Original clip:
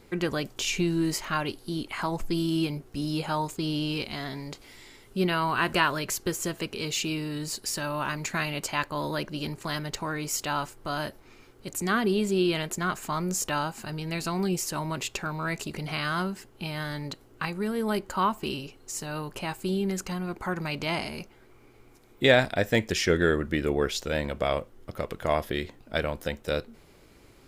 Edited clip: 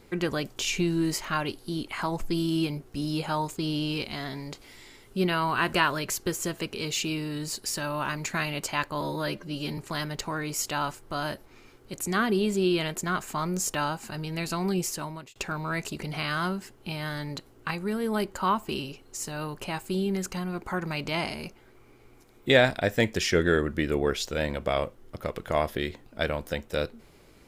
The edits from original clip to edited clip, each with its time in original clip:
9.01–9.52 stretch 1.5×
14.62–15.1 fade out

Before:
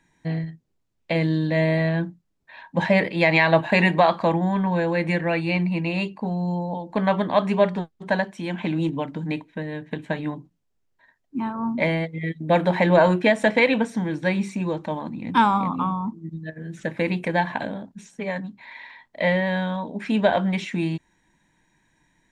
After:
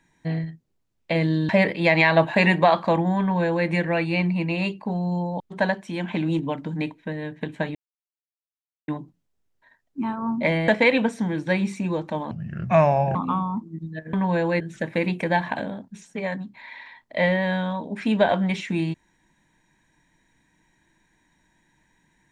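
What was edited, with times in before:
1.49–2.85 cut
4.56–5.03 copy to 16.64
6.76–7.9 cut
10.25 insert silence 1.13 s
12.05–13.44 cut
15.07–15.66 speed 70%

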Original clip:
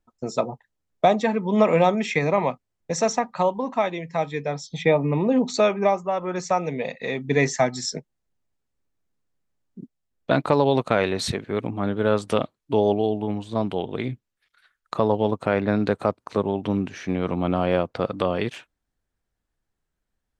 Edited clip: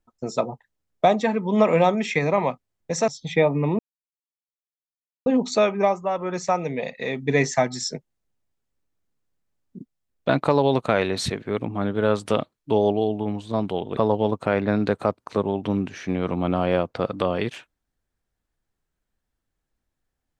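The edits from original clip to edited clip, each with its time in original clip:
3.08–4.57 cut
5.28 insert silence 1.47 s
13.99–14.97 cut

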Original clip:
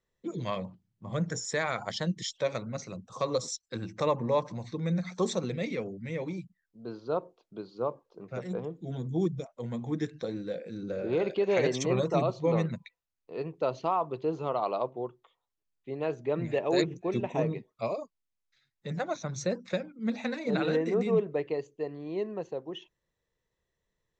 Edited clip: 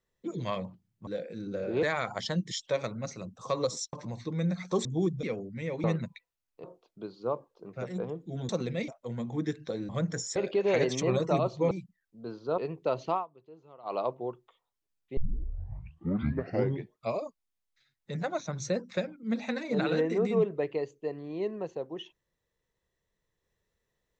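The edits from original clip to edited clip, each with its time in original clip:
1.07–1.54 swap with 10.43–11.19
3.64–4.4 cut
5.32–5.71 swap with 9.04–9.42
6.32–7.19 swap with 12.54–13.34
13.9–14.71 dip -21.5 dB, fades 0.12 s
15.93 tape start 1.80 s

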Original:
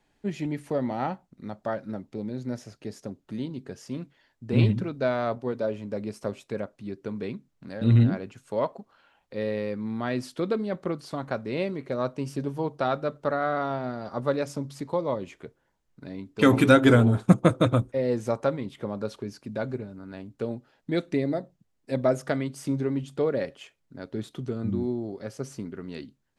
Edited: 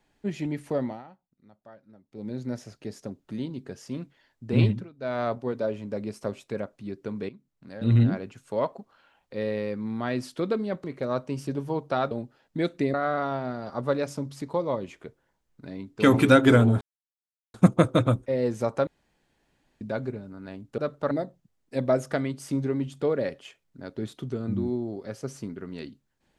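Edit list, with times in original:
0.81–2.31 dip -19.5 dB, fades 0.22 s
4.65–5.21 dip -17 dB, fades 0.24 s
7.29–8.09 fade in, from -15 dB
10.84–11.73 cut
13–13.33 swap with 20.44–21.27
17.2 insert silence 0.73 s
18.53–19.47 room tone

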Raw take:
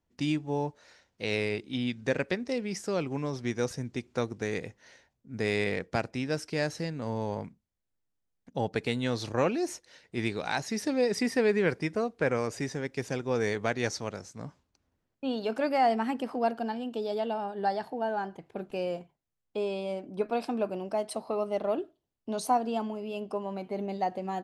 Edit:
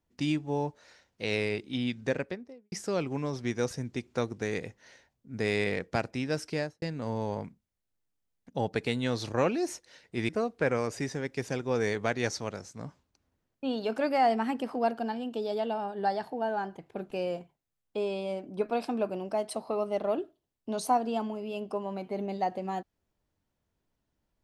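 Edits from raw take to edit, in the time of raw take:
1.95–2.72 studio fade out
6.52–6.82 studio fade out
10.29–11.89 cut

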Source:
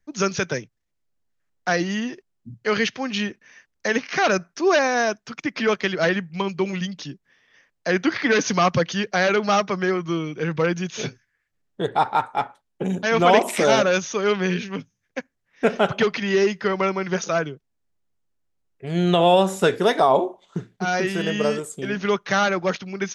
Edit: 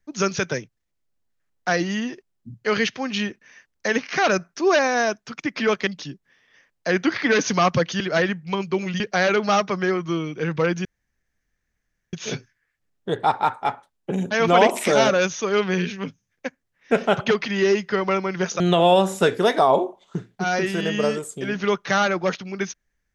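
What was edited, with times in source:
5.87–6.87 move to 9
10.85 insert room tone 1.28 s
17.32–19.01 cut

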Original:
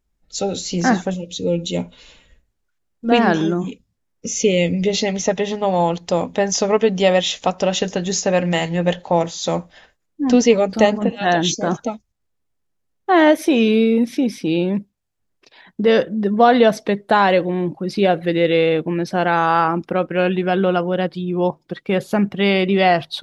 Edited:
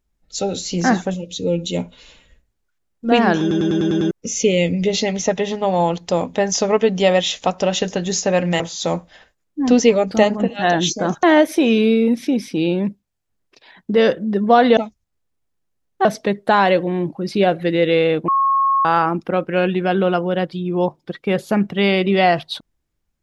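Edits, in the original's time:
3.41 stutter in place 0.10 s, 7 plays
8.6–9.22 cut
11.85–13.13 move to 16.67
18.9–19.47 bleep 1090 Hz -13 dBFS

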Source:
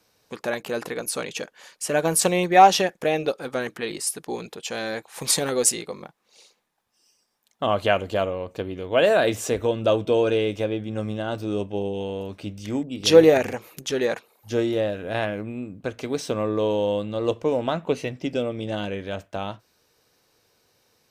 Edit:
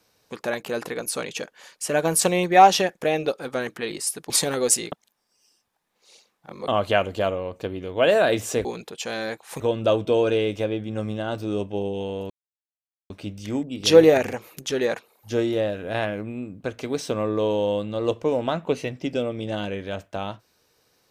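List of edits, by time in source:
4.3–5.25 move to 9.6
5.87–7.63 reverse
12.3 insert silence 0.80 s

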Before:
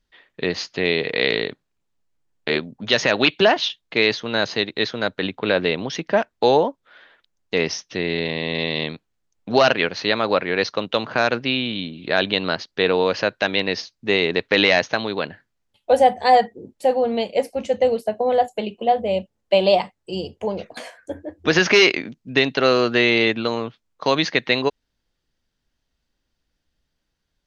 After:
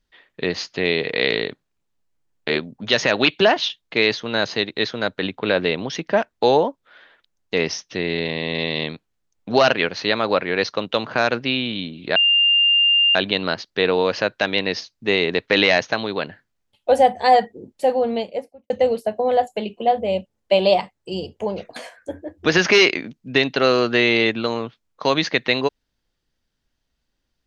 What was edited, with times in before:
12.16 add tone 2800 Hz -12.5 dBFS 0.99 s
17.05–17.71 studio fade out

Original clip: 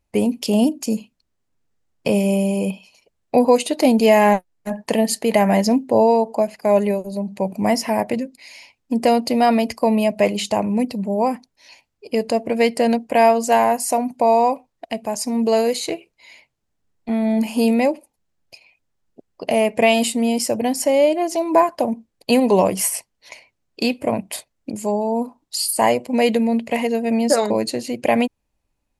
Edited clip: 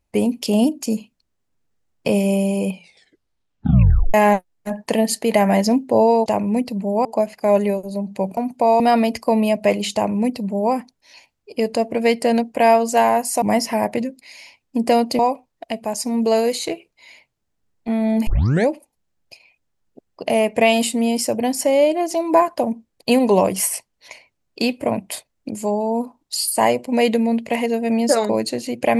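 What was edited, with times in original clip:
2.7 tape stop 1.44 s
7.58–9.35 swap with 13.97–14.4
10.49–11.28 copy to 6.26
17.48 tape start 0.41 s

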